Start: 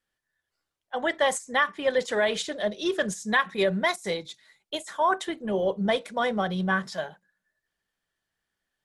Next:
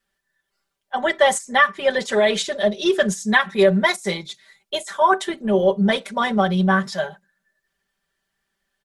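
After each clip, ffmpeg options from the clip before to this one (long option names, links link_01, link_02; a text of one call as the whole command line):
ffmpeg -i in.wav -af "aecho=1:1:5.1:0.93,volume=4dB" out.wav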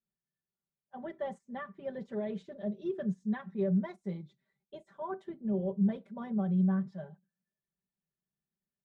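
ffmpeg -i in.wav -af "bandpass=frequency=140:width_type=q:width=1.4:csg=0,volume=-5.5dB" out.wav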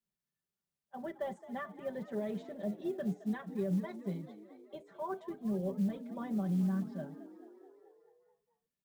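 ffmpeg -i in.wav -filter_complex "[0:a]acrossover=split=130|3000[link_01][link_02][link_03];[link_02]acompressor=threshold=-32dB:ratio=6[link_04];[link_01][link_04][link_03]amix=inputs=3:normalize=0,acrusher=bits=8:mode=log:mix=0:aa=0.000001,asplit=8[link_05][link_06][link_07][link_08][link_09][link_10][link_11][link_12];[link_06]adelay=217,afreqshift=43,volume=-16dB[link_13];[link_07]adelay=434,afreqshift=86,volume=-19.9dB[link_14];[link_08]adelay=651,afreqshift=129,volume=-23.8dB[link_15];[link_09]adelay=868,afreqshift=172,volume=-27.6dB[link_16];[link_10]adelay=1085,afreqshift=215,volume=-31.5dB[link_17];[link_11]adelay=1302,afreqshift=258,volume=-35.4dB[link_18];[link_12]adelay=1519,afreqshift=301,volume=-39.3dB[link_19];[link_05][link_13][link_14][link_15][link_16][link_17][link_18][link_19]amix=inputs=8:normalize=0" out.wav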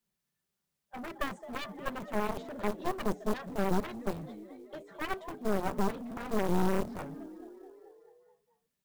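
ffmpeg -i in.wav -af "aeval=exprs='clip(val(0),-1,0.00596)':channel_layout=same,acrusher=bits=7:mode=log:mix=0:aa=0.000001,aeval=exprs='0.0596*(cos(1*acos(clip(val(0)/0.0596,-1,1)))-cos(1*PI/2))+0.0237*(cos(4*acos(clip(val(0)/0.0596,-1,1)))-cos(4*PI/2))+0.0266*(cos(7*acos(clip(val(0)/0.0596,-1,1)))-cos(7*PI/2))':channel_layout=same" out.wav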